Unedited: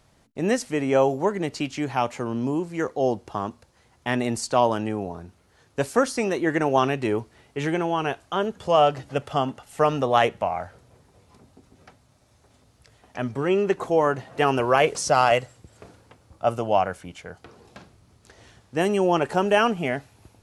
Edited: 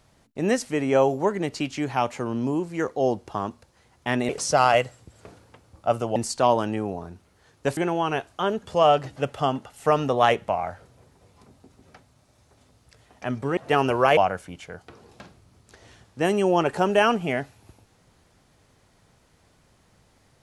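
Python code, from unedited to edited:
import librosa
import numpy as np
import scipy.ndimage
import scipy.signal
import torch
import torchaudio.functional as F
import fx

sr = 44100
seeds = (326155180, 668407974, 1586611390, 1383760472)

y = fx.edit(x, sr, fx.cut(start_s=5.9, length_s=1.8),
    fx.cut(start_s=13.5, length_s=0.76),
    fx.move(start_s=14.86, length_s=1.87, to_s=4.29), tone=tone)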